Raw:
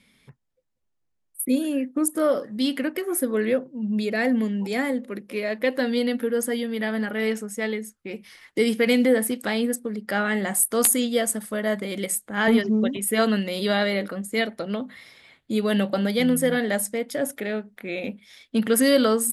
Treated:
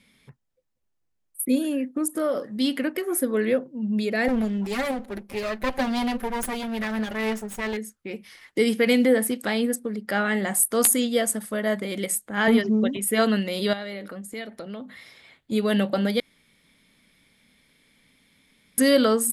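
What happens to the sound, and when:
0:01.62–0:02.49: downward compressor 2.5 to 1, threshold −22 dBFS
0:04.28–0:07.77: lower of the sound and its delayed copy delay 5.1 ms
0:13.73–0:15.52: downward compressor 2.5 to 1, threshold −36 dBFS
0:16.20–0:18.78: fill with room tone

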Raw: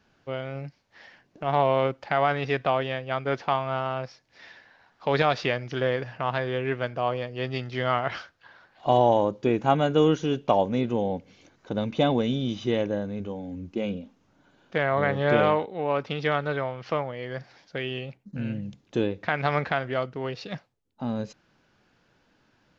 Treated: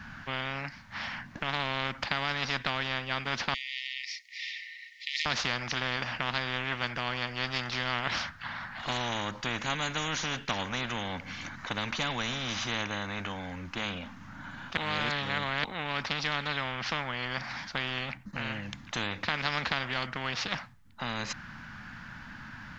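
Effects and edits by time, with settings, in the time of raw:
0:03.54–0:05.26: linear-phase brick-wall high-pass 1,800 Hz
0:14.77–0:15.64: reverse
whole clip: drawn EQ curve 230 Hz 0 dB, 410 Hz −26 dB, 940 Hz −3 dB, 1,800 Hz +3 dB, 2,600 Hz −6 dB, 6,400 Hz −10 dB; every bin compressed towards the loudest bin 4 to 1; level +2 dB

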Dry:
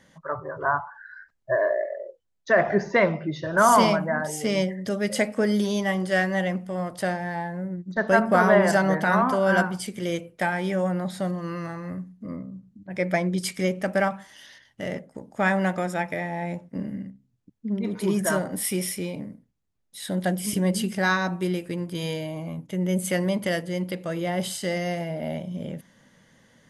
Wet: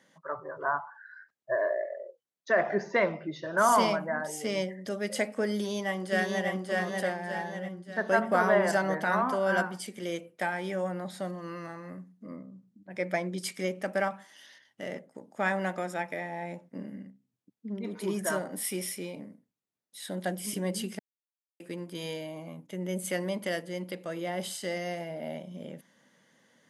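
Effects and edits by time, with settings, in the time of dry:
0:05.53–0:06.50: delay throw 590 ms, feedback 45%, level −2.5 dB
0:20.99–0:21.60: silence
whole clip: high-pass filter 220 Hz 12 dB per octave; level −5.5 dB

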